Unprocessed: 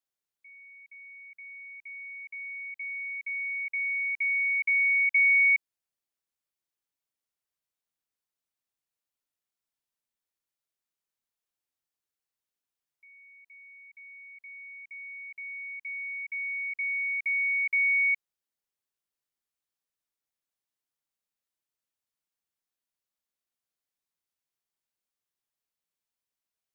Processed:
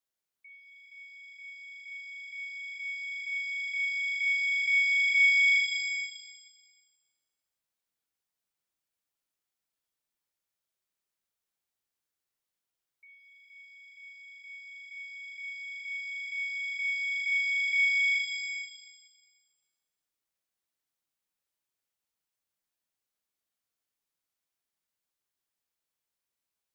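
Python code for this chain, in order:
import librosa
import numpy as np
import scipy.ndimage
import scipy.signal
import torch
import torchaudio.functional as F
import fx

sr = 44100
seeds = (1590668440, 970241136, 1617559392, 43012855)

p1 = x + fx.echo_single(x, sr, ms=404, db=-10.5, dry=0)
y = fx.rev_shimmer(p1, sr, seeds[0], rt60_s=1.3, semitones=7, shimmer_db=-8, drr_db=4.5)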